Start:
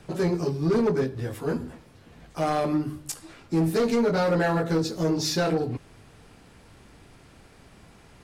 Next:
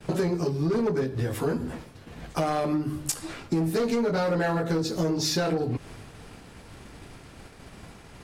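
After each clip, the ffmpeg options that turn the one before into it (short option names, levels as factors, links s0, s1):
-af "agate=range=0.0224:threshold=0.00447:ratio=3:detection=peak,acompressor=threshold=0.0224:ratio=6,volume=2.82"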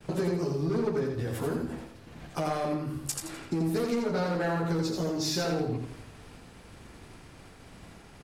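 -af "aecho=1:1:84|168|252|336:0.631|0.221|0.0773|0.0271,volume=0.562"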